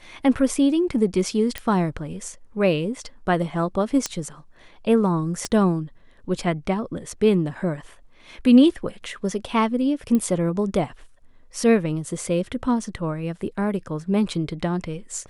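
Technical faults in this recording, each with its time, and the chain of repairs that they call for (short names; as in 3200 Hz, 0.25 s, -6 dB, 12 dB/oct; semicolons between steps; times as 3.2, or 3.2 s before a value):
1.58 pop -12 dBFS
4.06 pop -10 dBFS
5.45 pop -12 dBFS
10.15 pop -12 dBFS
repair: de-click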